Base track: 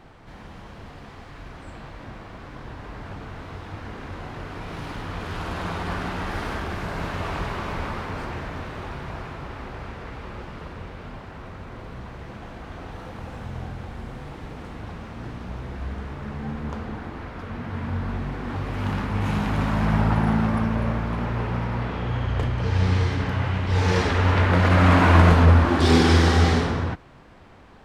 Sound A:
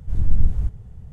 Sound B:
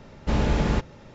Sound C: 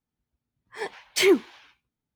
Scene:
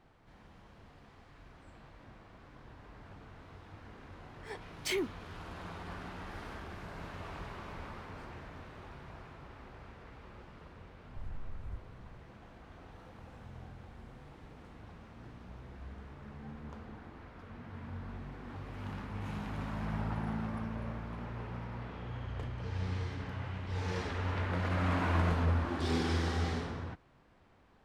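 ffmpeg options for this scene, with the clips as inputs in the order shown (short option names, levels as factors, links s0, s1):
-filter_complex "[0:a]volume=0.168[s0];[3:a]acompressor=threshold=0.1:ratio=6:attack=12:release=23:knee=1:detection=peak[s1];[1:a]acompressor=threshold=0.0794:ratio=6:attack=3.2:release=140:knee=1:detection=peak[s2];[s1]atrim=end=2.15,asetpts=PTS-STARTPTS,volume=0.251,afade=t=in:d=0.004:c=hsin,afade=t=out:st=2.146:d=0.004:c=hsin,adelay=162729S[s3];[s2]atrim=end=1.12,asetpts=PTS-STARTPTS,volume=0.178,afade=t=in:d=0.004:c=hsin,afade=t=out:st=1.116:d=0.004:c=hsin,adelay=11090[s4];[s0][s3][s4]amix=inputs=3:normalize=0"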